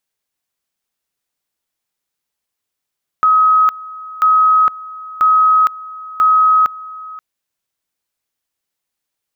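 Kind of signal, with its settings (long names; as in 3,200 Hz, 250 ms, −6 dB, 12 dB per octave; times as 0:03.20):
tone at two levels in turn 1,270 Hz −7.5 dBFS, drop 20 dB, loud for 0.46 s, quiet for 0.53 s, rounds 4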